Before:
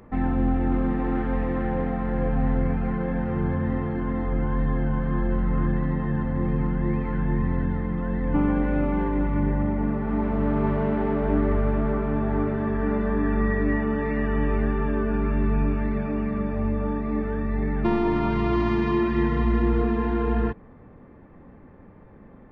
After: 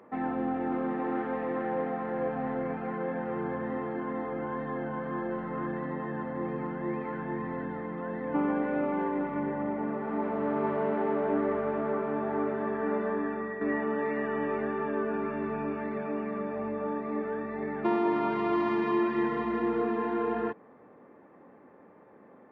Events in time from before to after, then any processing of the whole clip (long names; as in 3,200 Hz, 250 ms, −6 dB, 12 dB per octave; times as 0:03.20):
0:13.08–0:13.61: fade out, to −8.5 dB
whole clip: high-pass filter 360 Hz 12 dB per octave; high-shelf EQ 2,900 Hz −11 dB